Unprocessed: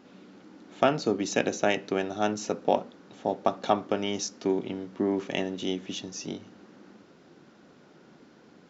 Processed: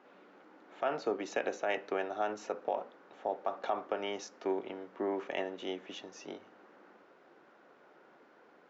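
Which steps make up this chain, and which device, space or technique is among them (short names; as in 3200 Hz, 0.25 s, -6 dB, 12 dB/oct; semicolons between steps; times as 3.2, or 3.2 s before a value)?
DJ mixer with the lows and highs turned down (three-band isolator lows -21 dB, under 410 Hz, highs -16 dB, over 2400 Hz; limiter -21.5 dBFS, peak gain reduction 10.5 dB)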